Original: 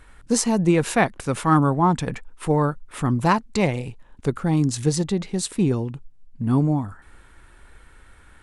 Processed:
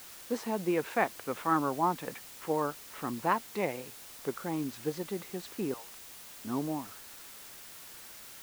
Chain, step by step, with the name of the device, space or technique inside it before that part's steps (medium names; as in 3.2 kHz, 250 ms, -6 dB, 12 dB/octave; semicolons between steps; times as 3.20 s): 5.74–6.45 s: high-pass 750 Hz 24 dB/octave; wax cylinder (band-pass 320–2500 Hz; wow and flutter; white noise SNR 14 dB); trim -8 dB